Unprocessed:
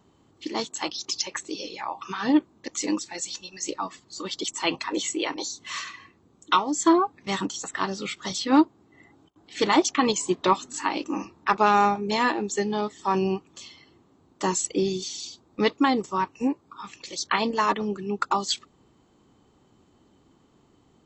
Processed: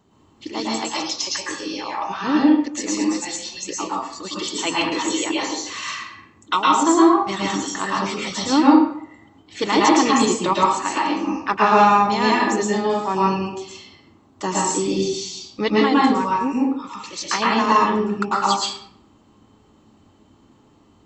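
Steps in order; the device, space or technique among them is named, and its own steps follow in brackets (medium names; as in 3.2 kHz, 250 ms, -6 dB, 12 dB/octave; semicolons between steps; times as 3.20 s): bathroom (reverberation RT60 0.65 s, pre-delay 106 ms, DRR -5 dB)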